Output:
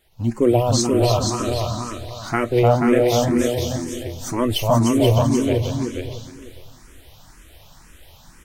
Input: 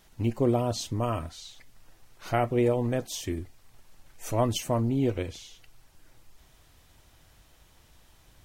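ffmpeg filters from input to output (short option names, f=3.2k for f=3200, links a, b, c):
-filter_complex "[0:a]asettb=1/sr,asplit=3[a][b][c];[a]atrim=end=0.414[d];[b]atrim=start=0.41:end=0.82,asetpts=PTS-STARTPTS,afade=t=in:d=0.004:c=qsin,afade=t=out:st=0.406:d=0.004:c=qsin,bass=f=250:g=-4,treble=f=4k:g=5[e];[c]atrim=start=0.816[f];[d][e]acrossfade=d=0.004:c1=hsin:c2=qsin[g];[g][f]acrossfade=d=0.004:c1=qsin:c2=hsin,asplit=2[h][i];[i]aecho=0:1:481|693:0.596|0.15[j];[h][j]amix=inputs=2:normalize=0,dynaudnorm=f=160:g=3:m=11dB,asplit=2[k][l];[l]aecho=0:1:303|606|909|1212|1515:0.668|0.241|0.0866|0.0312|0.0112[m];[k][m]amix=inputs=2:normalize=0,asplit=2[n][o];[o]afreqshift=2[p];[n][p]amix=inputs=2:normalize=1"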